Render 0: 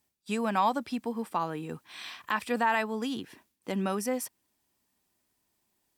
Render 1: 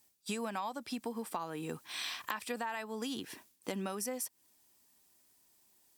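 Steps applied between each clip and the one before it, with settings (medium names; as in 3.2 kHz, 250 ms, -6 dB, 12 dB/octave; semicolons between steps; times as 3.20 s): tone controls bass -4 dB, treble +7 dB; compression 10:1, threshold -37 dBFS, peak gain reduction 16 dB; trim +2.5 dB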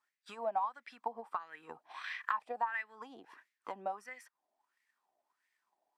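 wah-wah 1.5 Hz 670–2000 Hz, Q 6.2; transient shaper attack +5 dB, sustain -1 dB; trim +8 dB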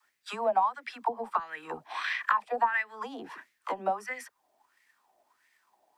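in parallel at -1 dB: compression, threshold -45 dBFS, peak gain reduction 16 dB; on the sum: phase dispersion lows, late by 57 ms, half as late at 350 Hz; trim +7 dB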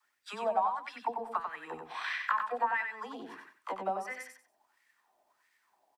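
feedback delay 93 ms, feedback 23%, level -5.5 dB; trim -4.5 dB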